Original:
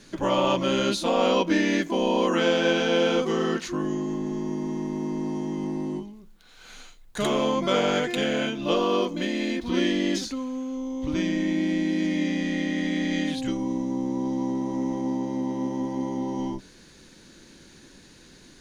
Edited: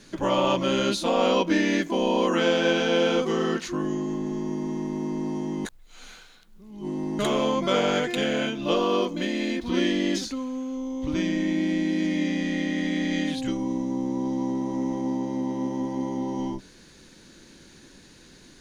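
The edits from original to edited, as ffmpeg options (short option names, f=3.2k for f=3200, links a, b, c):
-filter_complex "[0:a]asplit=3[a][b][c];[a]atrim=end=5.652[d];[b]atrim=start=5.648:end=7.192,asetpts=PTS-STARTPTS,areverse[e];[c]atrim=start=7.188[f];[d][e]acrossfade=d=0.004:c1=hsin:c2=hsin[g];[g][f]acrossfade=d=0.004:c1=hsin:c2=hsin"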